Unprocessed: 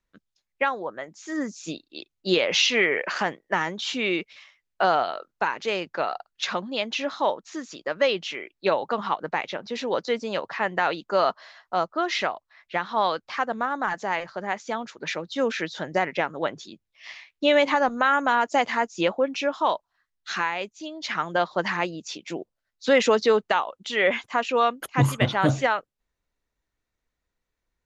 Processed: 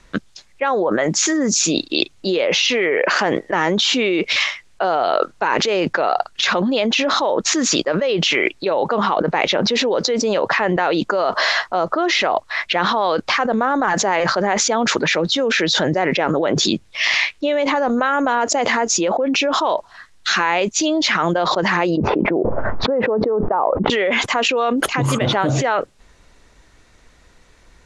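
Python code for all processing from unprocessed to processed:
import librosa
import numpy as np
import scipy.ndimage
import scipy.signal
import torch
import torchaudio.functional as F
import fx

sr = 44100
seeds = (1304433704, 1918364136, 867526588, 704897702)

y = fx.chain(x, sr, fx.lowpass(hz=1100.0, slope=24),
    fx.env_flatten(amount_pct=70), at=(21.97, 23.9))
y = scipy.signal.sosfilt(scipy.signal.butter(4, 9700.0, 'lowpass', fs=sr, output='sos'), y)
y = fx.dynamic_eq(y, sr, hz=440.0, q=0.83, threshold_db=-35.0, ratio=4.0, max_db=7)
y = fx.env_flatten(y, sr, amount_pct=100)
y = F.gain(torch.from_numpy(y), -9.0).numpy()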